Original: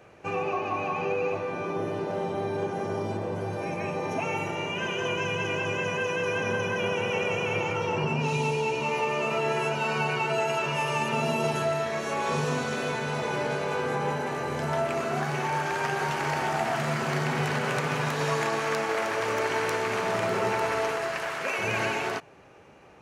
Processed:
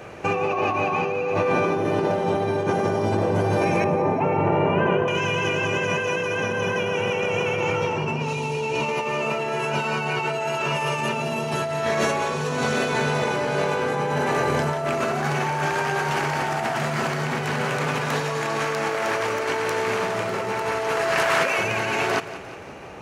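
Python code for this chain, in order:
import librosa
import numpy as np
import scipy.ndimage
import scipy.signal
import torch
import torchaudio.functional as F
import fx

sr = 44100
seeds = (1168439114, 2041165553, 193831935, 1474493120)

y = fx.lowpass(x, sr, hz=1200.0, slope=12, at=(3.84, 5.08))
y = fx.over_compress(y, sr, threshold_db=-33.0, ratio=-1.0)
y = fx.echo_feedback(y, sr, ms=176, feedback_pct=57, wet_db=-15.0)
y = y * librosa.db_to_amplitude(9.0)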